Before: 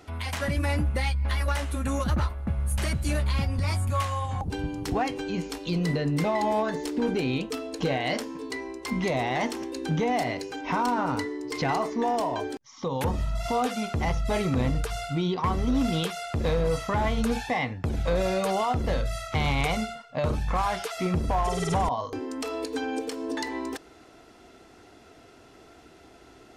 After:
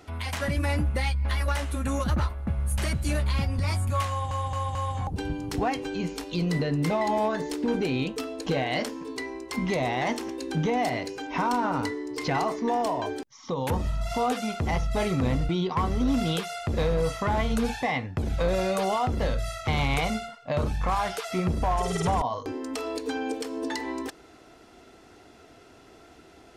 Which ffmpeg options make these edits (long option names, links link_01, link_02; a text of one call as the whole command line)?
ffmpeg -i in.wav -filter_complex "[0:a]asplit=5[link_01][link_02][link_03][link_04][link_05];[link_01]atrim=end=4.312[link_06];[link_02]atrim=start=4.088:end=4.312[link_07];[link_03]atrim=start=4.088:end=4.312[link_08];[link_04]atrim=start=4.088:end=14.832[link_09];[link_05]atrim=start=15.158[link_10];[link_06][link_07]acrossfade=duration=0.004:curve1=hsin:curve2=hsin[link_11];[link_11][link_08]acrossfade=duration=0.004:curve1=hsin:curve2=hsin[link_12];[link_12][link_09]acrossfade=duration=0.004:curve1=hsin:curve2=hsin[link_13];[link_13][link_10]acrossfade=duration=0.004:curve1=hsin:curve2=hsin" out.wav